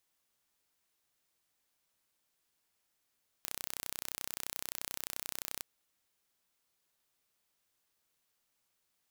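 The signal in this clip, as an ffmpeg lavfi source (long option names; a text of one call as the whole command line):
ffmpeg -f lavfi -i "aevalsrc='0.282*eq(mod(n,1400),0)':duration=2.16:sample_rate=44100" out.wav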